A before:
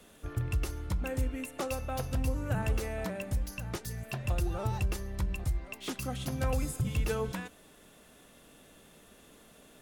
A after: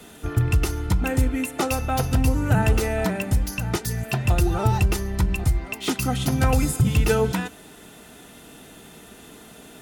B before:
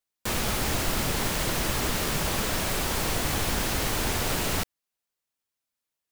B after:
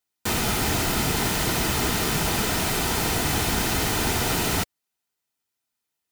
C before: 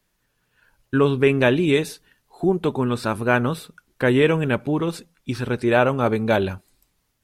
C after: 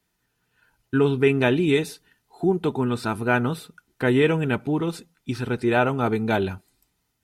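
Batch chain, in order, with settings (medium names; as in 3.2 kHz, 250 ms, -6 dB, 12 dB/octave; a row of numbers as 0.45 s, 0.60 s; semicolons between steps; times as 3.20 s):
comb of notches 560 Hz; normalise loudness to -23 LUFS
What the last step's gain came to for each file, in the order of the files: +13.0 dB, +5.0 dB, -1.0 dB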